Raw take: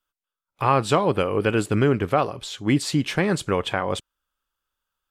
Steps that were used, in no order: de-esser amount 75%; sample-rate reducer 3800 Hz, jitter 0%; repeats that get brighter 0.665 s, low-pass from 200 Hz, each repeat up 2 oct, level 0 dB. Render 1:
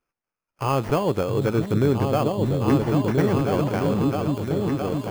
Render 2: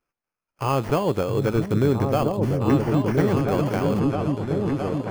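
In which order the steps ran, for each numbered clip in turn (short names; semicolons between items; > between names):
repeats that get brighter > sample-rate reducer > de-esser; sample-rate reducer > de-esser > repeats that get brighter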